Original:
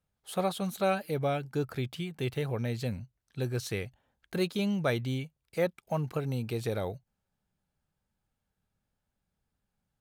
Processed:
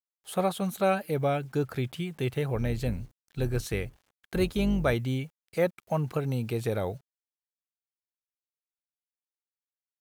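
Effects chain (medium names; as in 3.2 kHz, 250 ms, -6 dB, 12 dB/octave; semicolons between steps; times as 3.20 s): 2.54–4.94 s: octave divider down 2 oct, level -5 dB; bit crusher 11-bit; dynamic bell 4.5 kHz, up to -5 dB, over -53 dBFS, Q 1.3; trim +3 dB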